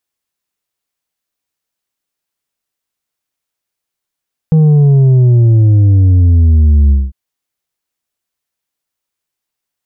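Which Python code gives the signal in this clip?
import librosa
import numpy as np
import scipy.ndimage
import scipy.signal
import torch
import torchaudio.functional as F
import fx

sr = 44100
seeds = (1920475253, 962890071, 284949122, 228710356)

y = fx.sub_drop(sr, level_db=-5.0, start_hz=160.0, length_s=2.6, drive_db=5, fade_s=0.21, end_hz=65.0)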